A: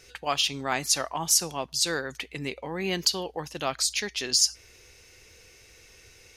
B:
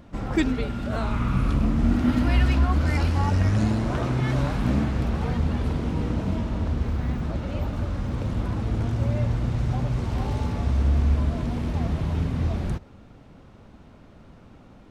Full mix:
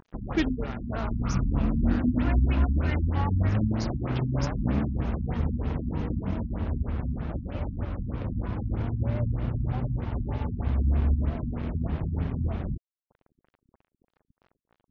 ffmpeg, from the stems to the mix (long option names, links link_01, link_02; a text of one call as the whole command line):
ffmpeg -i stem1.wav -i stem2.wav -filter_complex "[0:a]acompressor=threshold=-27dB:ratio=6,volume=-9dB[link_01];[1:a]lowpass=frequency=3300:width=0.5412,lowpass=frequency=3300:width=1.3066,acompressor=mode=upward:threshold=-36dB:ratio=2.5,volume=-2dB[link_02];[link_01][link_02]amix=inputs=2:normalize=0,aeval=exprs='sgn(val(0))*max(abs(val(0))-0.0112,0)':channel_layout=same,afftfilt=real='re*lt(b*sr/1024,270*pow(7100/270,0.5+0.5*sin(2*PI*3.2*pts/sr)))':imag='im*lt(b*sr/1024,270*pow(7100/270,0.5+0.5*sin(2*PI*3.2*pts/sr)))':win_size=1024:overlap=0.75" out.wav